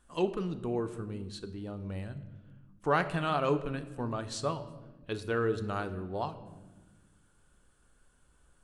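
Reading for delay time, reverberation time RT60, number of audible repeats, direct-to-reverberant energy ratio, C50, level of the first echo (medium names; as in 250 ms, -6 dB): no echo, 1.3 s, no echo, 9.0 dB, 13.0 dB, no echo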